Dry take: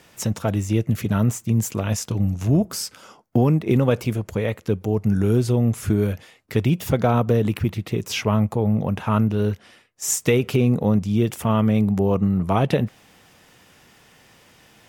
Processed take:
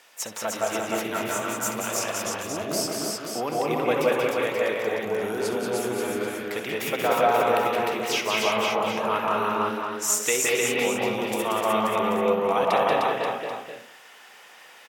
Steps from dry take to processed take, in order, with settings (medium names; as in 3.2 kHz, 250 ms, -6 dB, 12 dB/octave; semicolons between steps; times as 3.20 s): high-pass 660 Hz 12 dB/octave; multi-tap echo 65/183/304/531/786 ms -12.5/-5/-3/-7/-13 dB; reverberation RT60 0.50 s, pre-delay 163 ms, DRR -2.5 dB; trim -1 dB